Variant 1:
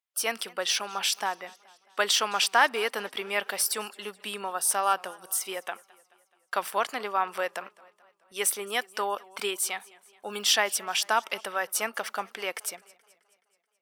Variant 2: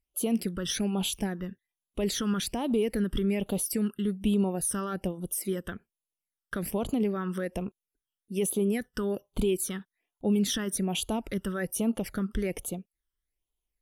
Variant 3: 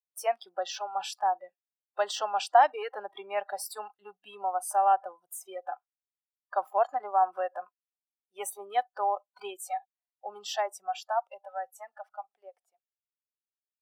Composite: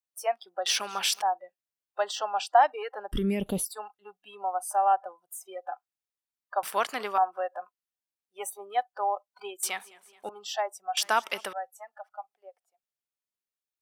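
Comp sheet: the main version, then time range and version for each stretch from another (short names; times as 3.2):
3
0.66–1.22 from 1
3.12–3.65 from 2
6.63–7.18 from 1
9.63–10.29 from 1
10.97–11.53 from 1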